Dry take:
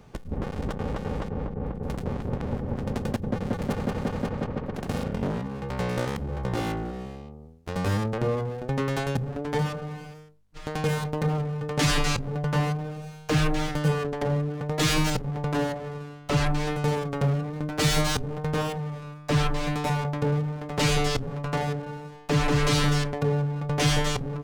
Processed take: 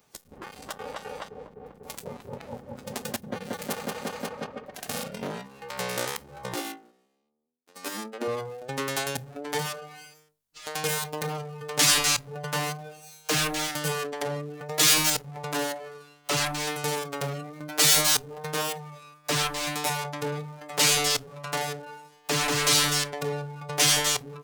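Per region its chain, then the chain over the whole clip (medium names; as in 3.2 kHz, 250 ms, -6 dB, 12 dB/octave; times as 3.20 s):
6.55–8.28 s: resonant low shelf 170 Hz -12 dB, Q 3 + upward expansion 2.5:1, over -37 dBFS
whole clip: RIAA curve recording; spectral noise reduction 10 dB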